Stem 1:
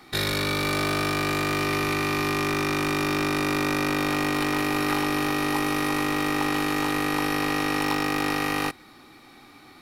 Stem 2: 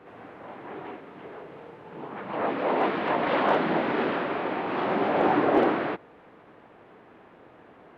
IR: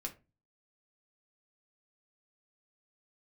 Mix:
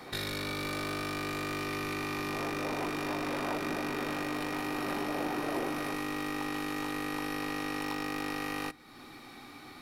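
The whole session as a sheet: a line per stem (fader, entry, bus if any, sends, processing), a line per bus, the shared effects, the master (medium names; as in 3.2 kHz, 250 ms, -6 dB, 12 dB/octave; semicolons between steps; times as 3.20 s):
-1.0 dB, 0.00 s, send -9.5 dB, none
-0.5 dB, 0.00 s, no send, none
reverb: on, RT60 0.30 s, pre-delay 4 ms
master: compression 2:1, threshold -42 dBFS, peak gain reduction 14 dB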